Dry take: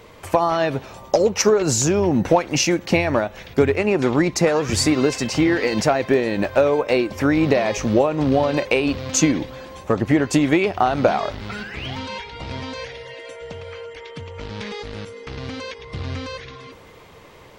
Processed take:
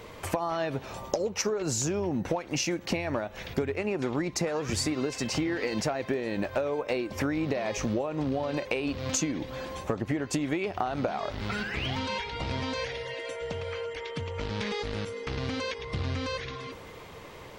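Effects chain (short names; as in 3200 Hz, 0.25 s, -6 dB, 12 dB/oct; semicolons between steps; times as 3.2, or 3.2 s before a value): compressor 6:1, threshold -27 dBFS, peak gain reduction 16 dB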